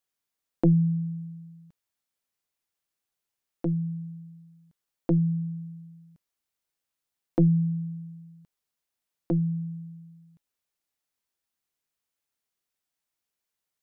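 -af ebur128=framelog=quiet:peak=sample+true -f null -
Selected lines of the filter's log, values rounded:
Integrated loudness:
  I:         -27.4 LUFS
  Threshold: -39.8 LUFS
Loudness range:
  LRA:         8.1 LU
  Threshold: -52.6 LUFS
  LRA low:   -37.7 LUFS
  LRA high:  -29.6 LUFS
Sample peak:
  Peak:      -12.4 dBFS
True peak:
  Peak:      -12.4 dBFS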